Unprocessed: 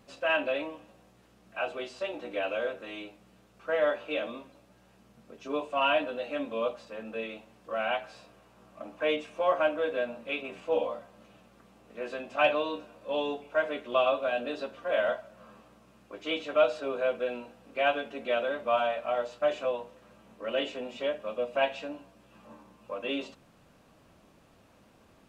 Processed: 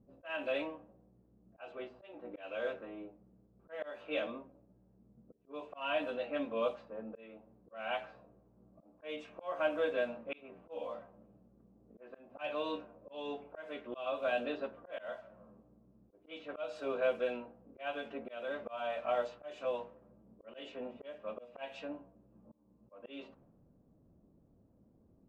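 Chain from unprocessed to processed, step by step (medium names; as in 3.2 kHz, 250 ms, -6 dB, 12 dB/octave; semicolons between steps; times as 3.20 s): level-controlled noise filter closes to 320 Hz, open at -25 dBFS; slow attack 357 ms; trim -3 dB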